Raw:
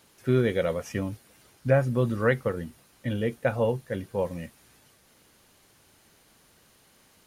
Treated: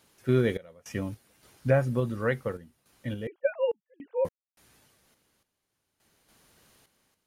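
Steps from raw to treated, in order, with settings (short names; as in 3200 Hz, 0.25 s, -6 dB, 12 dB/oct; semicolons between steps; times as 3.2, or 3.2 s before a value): 3.27–4.25 sine-wave speech; random-step tremolo, depth 100%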